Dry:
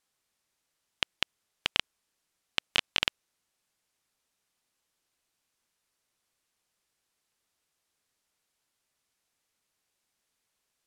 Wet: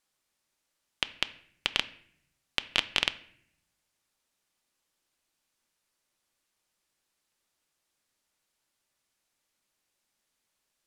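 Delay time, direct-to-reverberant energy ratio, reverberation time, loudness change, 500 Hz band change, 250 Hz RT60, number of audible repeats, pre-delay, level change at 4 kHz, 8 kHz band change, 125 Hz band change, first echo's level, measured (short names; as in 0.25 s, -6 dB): none, 11.5 dB, 0.65 s, +0.5 dB, +0.5 dB, 1.0 s, none, 3 ms, 0.0 dB, 0.0 dB, -1.0 dB, none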